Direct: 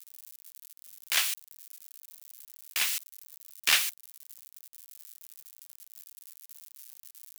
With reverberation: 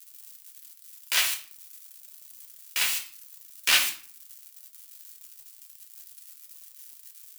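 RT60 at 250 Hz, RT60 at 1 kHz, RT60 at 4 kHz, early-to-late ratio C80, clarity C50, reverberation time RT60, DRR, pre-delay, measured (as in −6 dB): 0.70 s, 0.45 s, 0.35 s, 14.0 dB, 9.5 dB, 0.45 s, 0.0 dB, 3 ms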